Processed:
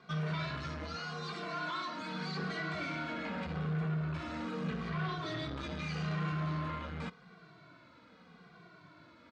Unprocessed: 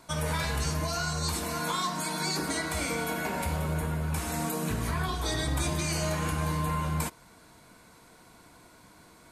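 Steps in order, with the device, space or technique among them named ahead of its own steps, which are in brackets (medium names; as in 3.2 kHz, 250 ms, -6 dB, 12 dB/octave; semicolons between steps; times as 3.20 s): 0.96–2.01 s: high-pass 260 Hz 12 dB/octave; barber-pole flanger into a guitar amplifier (endless flanger 2.1 ms -0.83 Hz; saturation -34 dBFS, distortion -11 dB; cabinet simulation 110–4200 Hz, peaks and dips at 170 Hz +8 dB, 890 Hz -6 dB, 1.3 kHz +6 dB)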